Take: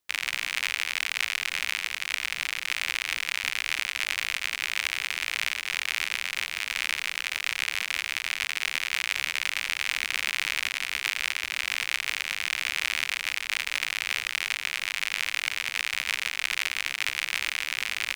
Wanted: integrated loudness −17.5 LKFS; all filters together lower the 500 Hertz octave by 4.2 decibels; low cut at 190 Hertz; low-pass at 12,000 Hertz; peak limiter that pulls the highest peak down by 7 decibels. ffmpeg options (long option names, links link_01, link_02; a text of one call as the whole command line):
ffmpeg -i in.wav -af "highpass=190,lowpass=12000,equalizer=frequency=500:width_type=o:gain=-5.5,volume=14.5dB,alimiter=limit=-0.5dB:level=0:latency=1" out.wav